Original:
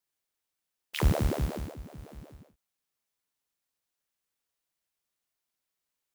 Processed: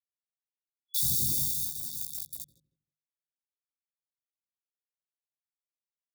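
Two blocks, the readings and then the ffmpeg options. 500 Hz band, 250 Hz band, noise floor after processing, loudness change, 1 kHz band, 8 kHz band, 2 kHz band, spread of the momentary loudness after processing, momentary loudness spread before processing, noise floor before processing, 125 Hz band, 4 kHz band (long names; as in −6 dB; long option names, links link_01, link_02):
below −20 dB, −11.5 dB, below −85 dBFS, +3.0 dB, below −40 dB, +16.0 dB, below −40 dB, 16 LU, 21 LU, below −85 dBFS, −11.0 dB, +6.0 dB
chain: -filter_complex "[0:a]aphaser=in_gain=1:out_gain=1:delay=1.3:decay=0.59:speed=1.6:type=triangular,acrusher=bits=6:mix=0:aa=0.000001,aderivative,asplit=2[link_01][link_02];[link_02]adelay=157,lowpass=frequency=970:poles=1,volume=-8.5dB,asplit=2[link_03][link_04];[link_04]adelay=157,lowpass=frequency=970:poles=1,volume=0.25,asplit=2[link_05][link_06];[link_06]adelay=157,lowpass=frequency=970:poles=1,volume=0.25[link_07];[link_01][link_03][link_05][link_07]amix=inputs=4:normalize=0,dynaudnorm=framelen=350:gausssize=5:maxgain=13.5dB,afftfilt=real='re*(1-between(b*sr/4096,570,3400))':imag='im*(1-between(b*sr/4096,570,3400))':win_size=4096:overlap=0.75,bandreject=frequency=50:width_type=h:width=6,bandreject=frequency=100:width_type=h:width=6,bandreject=frequency=150:width_type=h:width=6,bandreject=frequency=200:width_type=h:width=6,bandreject=frequency=250:width_type=h:width=6,aecho=1:1:1.1:0.97,flanger=delay=18.5:depth=4.4:speed=0.4,equalizer=frequency=130:width=2.8:gain=9"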